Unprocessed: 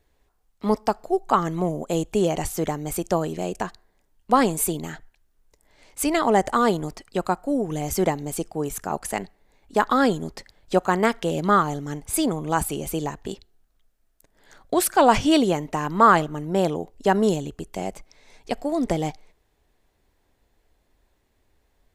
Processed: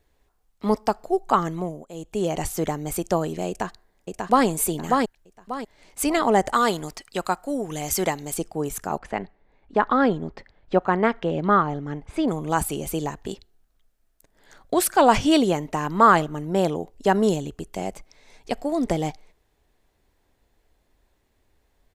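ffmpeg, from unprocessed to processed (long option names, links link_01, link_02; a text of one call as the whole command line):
ffmpeg -i in.wav -filter_complex "[0:a]asplit=2[link_01][link_02];[link_02]afade=type=in:start_time=3.48:duration=0.01,afade=type=out:start_time=4.46:duration=0.01,aecho=0:1:590|1180|1770|2360:0.707946|0.212384|0.0637151|0.0191145[link_03];[link_01][link_03]amix=inputs=2:normalize=0,asettb=1/sr,asplit=3[link_04][link_05][link_06];[link_04]atrim=end=6.534[link_07];[link_05]atrim=start=6.53:end=8.34,asetpts=PTS-STARTPTS,afade=type=in:duration=0.004:curve=qsin,afade=type=out:start_time=1.806:duration=0.004:curve=qsin,tiltshelf=frequency=910:gain=-5[link_08];[link_06]atrim=start=8.336[link_09];[link_07][link_08]acrossfade=duration=0.004:curve1=hsin:curve2=qsin[link_10];[link_10][link_09]acrossfade=duration=0.004:curve1=qsin:curve2=hsin,asettb=1/sr,asplit=3[link_11][link_12][link_13];[link_11]atrim=end=8.984[link_14];[link_12]atrim=start=8.98:end=12.28,asetpts=PTS-STARTPTS,afade=type=in:duration=0.004:curve=qsin,afade=type=out:start_time=3.296:duration=0.004:curve=qsin,lowpass=2500[link_15];[link_13]atrim=start=12.276[link_16];[link_14][link_15]acrossfade=duration=0.004:curve1=hsin:curve2=qsin[link_17];[link_17][link_16]acrossfade=duration=0.004:curve1=qsin:curve2=hsin,asplit=3[link_18][link_19][link_20];[link_18]atrim=end=1.89,asetpts=PTS-STARTPTS,afade=type=out:start_time=1.39:duration=0.5:silence=0.177828[link_21];[link_19]atrim=start=1.89:end=1.93,asetpts=PTS-STARTPTS,volume=-15dB[link_22];[link_20]atrim=start=1.93,asetpts=PTS-STARTPTS,afade=type=in:duration=0.5:silence=0.177828[link_23];[link_21][link_22][link_23]concat=n=3:v=0:a=1" out.wav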